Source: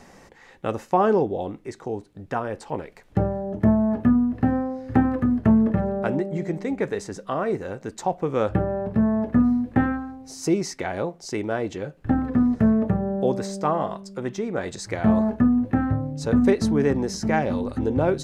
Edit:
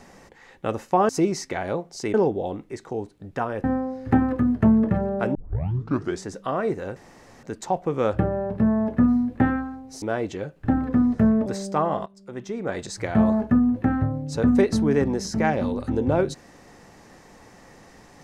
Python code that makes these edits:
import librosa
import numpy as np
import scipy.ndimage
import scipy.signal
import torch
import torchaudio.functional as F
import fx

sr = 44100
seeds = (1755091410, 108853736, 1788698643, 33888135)

y = fx.edit(x, sr, fx.cut(start_s=2.59, length_s=1.88),
    fx.tape_start(start_s=6.18, length_s=0.9),
    fx.insert_room_tone(at_s=7.79, length_s=0.47),
    fx.move(start_s=10.38, length_s=1.05, to_s=1.09),
    fx.cut(start_s=12.87, length_s=0.48),
    fx.fade_in_from(start_s=13.95, length_s=0.71, floor_db=-17.0), tone=tone)